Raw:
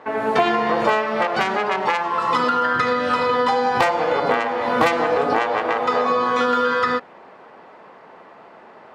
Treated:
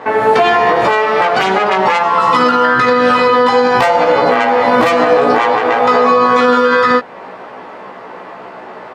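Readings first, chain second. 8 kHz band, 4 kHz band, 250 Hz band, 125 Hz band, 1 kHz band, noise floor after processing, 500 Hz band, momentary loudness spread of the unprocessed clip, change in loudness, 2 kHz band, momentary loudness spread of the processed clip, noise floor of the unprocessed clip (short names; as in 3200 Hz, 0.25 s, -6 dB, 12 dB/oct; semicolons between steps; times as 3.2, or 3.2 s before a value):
n/a, +8.0 dB, +9.0 dB, +7.5 dB, +8.5 dB, -32 dBFS, +9.5 dB, 3 LU, +8.5 dB, +8.0 dB, 3 LU, -45 dBFS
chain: in parallel at -1.5 dB: compressor, threshold -31 dBFS, peak gain reduction 17.5 dB; on the sum: doubler 16 ms -2.5 dB; maximiser +7.5 dB; gain -1 dB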